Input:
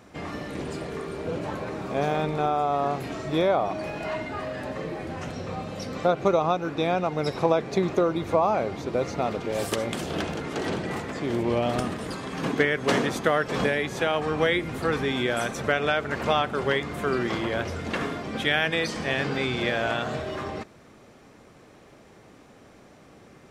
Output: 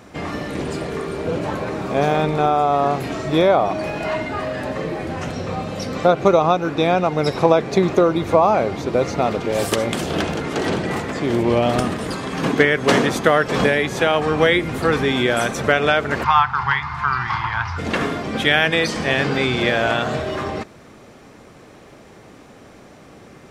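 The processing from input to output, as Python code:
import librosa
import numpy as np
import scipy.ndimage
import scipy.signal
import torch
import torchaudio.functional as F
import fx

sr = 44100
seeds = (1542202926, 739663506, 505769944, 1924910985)

y = fx.curve_eq(x, sr, hz=(130.0, 220.0, 570.0, 890.0, 3400.0, 4900.0, 10000.0), db=(0, -19, -30, 9, -7, -2, -27), at=(16.23, 17.77), fade=0.02)
y = F.gain(torch.from_numpy(y), 7.5).numpy()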